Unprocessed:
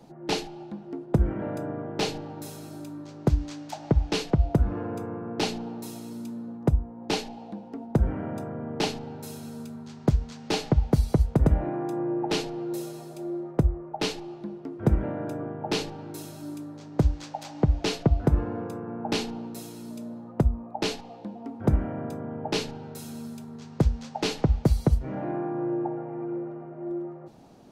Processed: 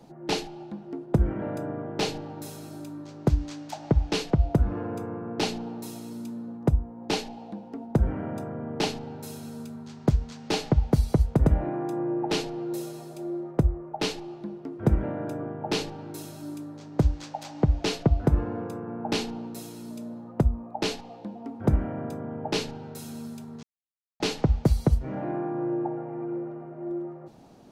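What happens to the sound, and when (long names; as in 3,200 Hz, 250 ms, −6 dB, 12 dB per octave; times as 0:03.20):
0:23.63–0:24.20: silence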